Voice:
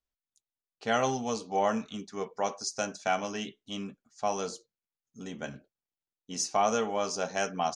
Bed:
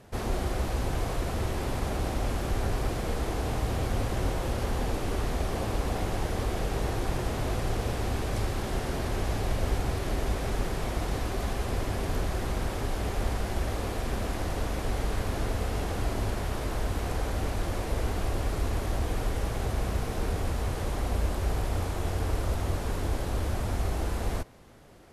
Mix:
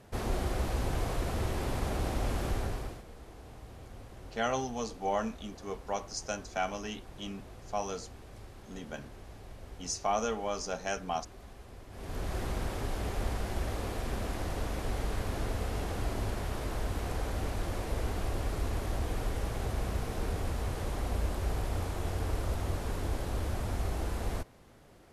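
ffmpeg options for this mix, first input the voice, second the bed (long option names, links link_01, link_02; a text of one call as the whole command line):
ffmpeg -i stem1.wav -i stem2.wav -filter_complex "[0:a]adelay=3500,volume=-4dB[link_01];[1:a]volume=13dB,afade=type=out:start_time=2.47:duration=0.57:silence=0.141254,afade=type=in:start_time=11.9:duration=0.47:silence=0.16788[link_02];[link_01][link_02]amix=inputs=2:normalize=0" out.wav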